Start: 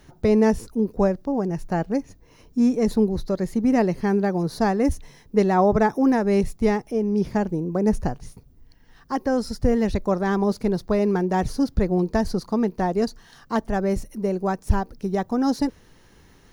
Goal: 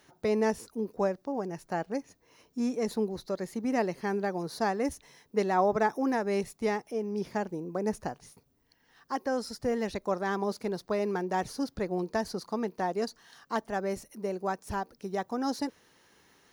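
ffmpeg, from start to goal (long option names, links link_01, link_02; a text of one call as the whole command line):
ffmpeg -i in.wav -af "highpass=frequency=520:poles=1,volume=-4dB" out.wav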